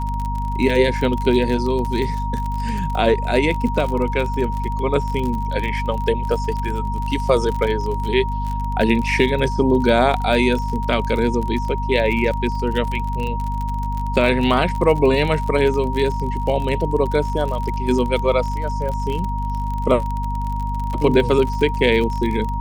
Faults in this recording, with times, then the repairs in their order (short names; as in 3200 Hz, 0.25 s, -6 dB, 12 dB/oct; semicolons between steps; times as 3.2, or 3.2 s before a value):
crackle 40/s -24 dBFS
hum 50 Hz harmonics 5 -24 dBFS
tone 940 Hz -26 dBFS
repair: de-click; notch 940 Hz, Q 30; de-hum 50 Hz, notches 5